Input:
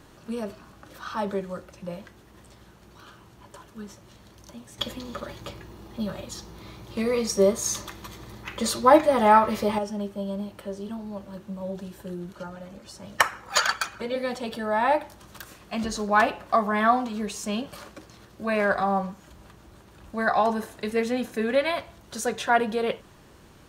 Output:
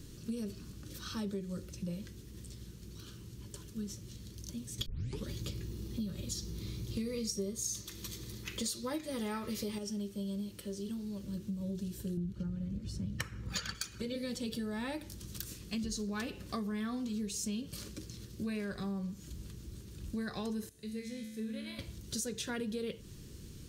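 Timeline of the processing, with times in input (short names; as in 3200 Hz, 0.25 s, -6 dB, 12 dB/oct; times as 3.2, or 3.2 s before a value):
4.86 tape start 0.40 s
7.81–11.24 low shelf 280 Hz -8.5 dB
12.17–13.75 tone controls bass +11 dB, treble -10 dB
20.69–21.79 resonator 73 Hz, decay 1.3 s, mix 90%
whole clip: EQ curve 120 Hz 0 dB, 460 Hz -9 dB, 700 Hz -28 dB, 5000 Hz -2 dB; compressor 6:1, threshold -41 dBFS; gain +6 dB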